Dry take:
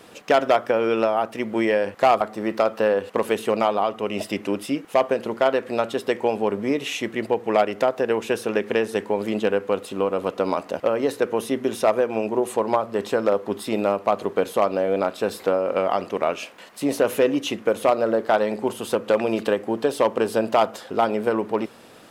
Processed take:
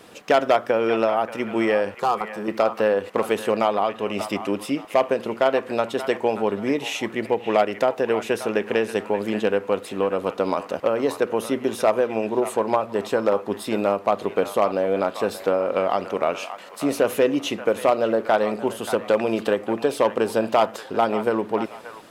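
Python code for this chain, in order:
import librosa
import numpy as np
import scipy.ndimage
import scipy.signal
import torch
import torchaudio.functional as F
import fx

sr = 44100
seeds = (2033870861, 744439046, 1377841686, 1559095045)

y = fx.fixed_phaser(x, sr, hz=420.0, stages=8, at=(1.96, 2.48))
y = fx.echo_wet_bandpass(y, sr, ms=581, feedback_pct=30, hz=1500.0, wet_db=-9.5)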